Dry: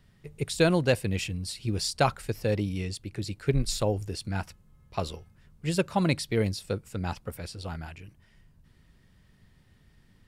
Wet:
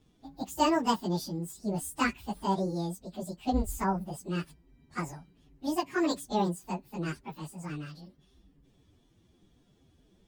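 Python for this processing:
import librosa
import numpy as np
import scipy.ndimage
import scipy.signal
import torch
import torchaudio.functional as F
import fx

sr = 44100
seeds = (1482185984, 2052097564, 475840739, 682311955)

y = fx.pitch_bins(x, sr, semitones=10.5)
y = fx.high_shelf(y, sr, hz=6600.0, db=-5.0)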